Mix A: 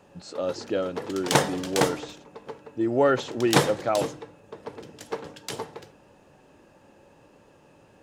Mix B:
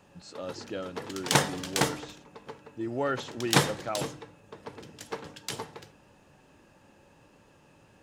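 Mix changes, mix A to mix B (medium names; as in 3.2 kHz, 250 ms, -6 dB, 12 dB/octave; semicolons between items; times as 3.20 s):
speech -4.5 dB; master: add peaking EQ 490 Hz -6 dB 1.9 oct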